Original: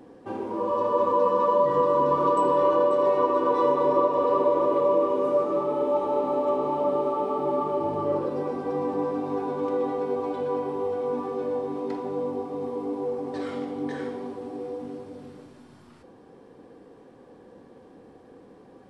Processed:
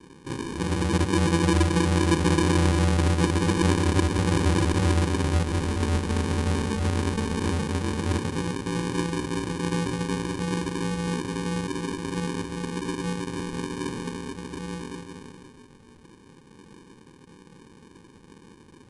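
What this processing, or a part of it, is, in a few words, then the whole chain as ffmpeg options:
crushed at another speed: -af "asetrate=88200,aresample=44100,acrusher=samples=33:mix=1:aa=0.000001,asetrate=22050,aresample=44100"

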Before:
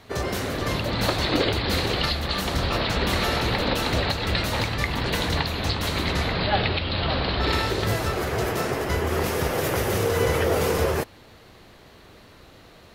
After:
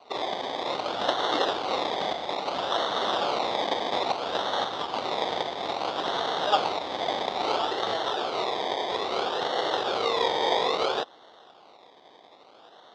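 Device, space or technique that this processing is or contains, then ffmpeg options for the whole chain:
circuit-bent sampling toy: -af "acrusher=samples=25:mix=1:aa=0.000001:lfo=1:lforange=15:lforate=0.6,highpass=510,equalizer=frequency=760:width_type=q:width=4:gain=5,equalizer=frequency=1700:width_type=q:width=4:gain=-4,equalizer=frequency=2500:width_type=q:width=4:gain=-7,equalizer=frequency=3600:width_type=q:width=4:gain=9,lowpass=frequency=4800:width=0.5412,lowpass=frequency=4800:width=1.3066"

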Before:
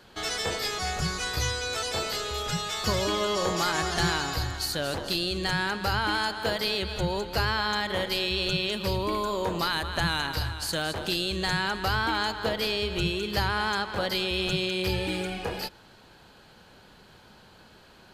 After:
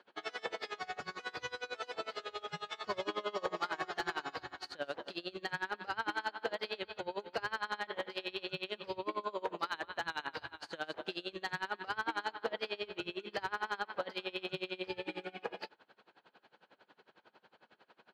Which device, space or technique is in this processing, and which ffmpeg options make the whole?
helicopter radio: -af "highpass=340,lowpass=2800,aeval=exprs='val(0)*pow(10,-25*(0.5-0.5*cos(2*PI*11*n/s))/20)':channel_layout=same,asoftclip=type=hard:threshold=-22dB,volume=-3dB"

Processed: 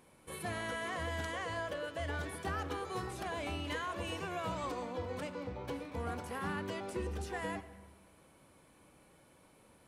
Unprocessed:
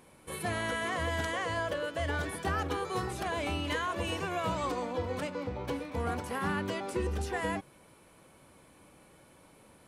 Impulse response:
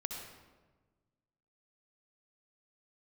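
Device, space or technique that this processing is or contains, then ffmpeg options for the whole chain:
saturated reverb return: -filter_complex "[0:a]asplit=2[link_01][link_02];[1:a]atrim=start_sample=2205[link_03];[link_02][link_03]afir=irnorm=-1:irlink=0,asoftclip=type=tanh:threshold=-31.5dB,volume=-7.5dB[link_04];[link_01][link_04]amix=inputs=2:normalize=0,volume=-7.5dB"

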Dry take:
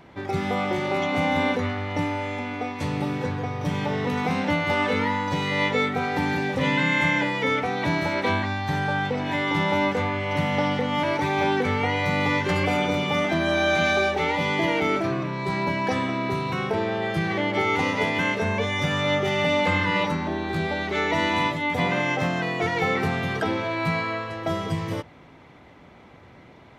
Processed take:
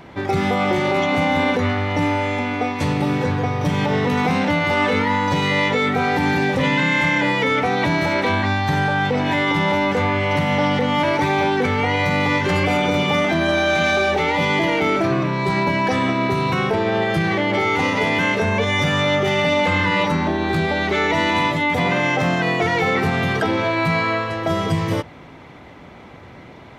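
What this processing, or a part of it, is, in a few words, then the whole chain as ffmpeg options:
soft clipper into limiter: -af "asoftclip=type=tanh:threshold=-13dB,alimiter=limit=-19dB:level=0:latency=1,volume=8dB"

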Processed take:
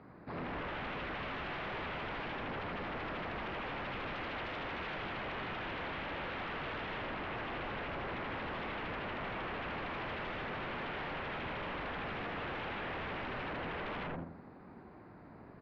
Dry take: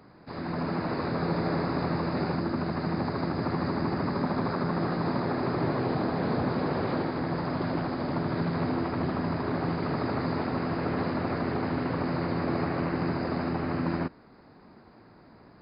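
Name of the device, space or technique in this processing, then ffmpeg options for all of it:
synthesiser wavefolder: -filter_complex "[0:a]asettb=1/sr,asplit=3[link_01][link_02][link_03];[link_01]atrim=end=3.914[link_04];[link_02]atrim=start=3.91:end=5.05,asetpts=PTS-STARTPTS,afade=type=in:duration=0.004:curve=qsin,afade=type=out:start_time=1.136:duration=0.004:curve=qsin,aecho=1:1:2.4:0.62,atrim=end_sample=50274[link_05];[link_03]atrim=start=5.046[link_06];[link_04][link_05]acrossfade=duration=0.004:curve1=hsin:curve2=qsin[link_07];[link_07][link_06]acrossfade=duration=0.004:curve1=qsin:curve2=hsin,asplit=2[link_08][link_09];[link_09]adelay=84,lowpass=frequency=1400:poles=1,volume=-3dB,asplit=2[link_10][link_11];[link_11]adelay=84,lowpass=frequency=1400:poles=1,volume=0.44,asplit=2[link_12][link_13];[link_13]adelay=84,lowpass=frequency=1400:poles=1,volume=0.44,asplit=2[link_14][link_15];[link_15]adelay=84,lowpass=frequency=1400:poles=1,volume=0.44,asplit=2[link_16][link_17];[link_17]adelay=84,lowpass=frequency=1400:poles=1,volume=0.44,asplit=2[link_18][link_19];[link_19]adelay=84,lowpass=frequency=1400:poles=1,volume=0.44[link_20];[link_08][link_10][link_12][link_14][link_16][link_18][link_20]amix=inputs=7:normalize=0,aeval=exprs='0.0224*(abs(mod(val(0)/0.0224+3,4)-2)-1)':channel_layout=same,lowpass=frequency=3100:width=0.5412,lowpass=frequency=3100:width=1.3066,volume=-2dB"

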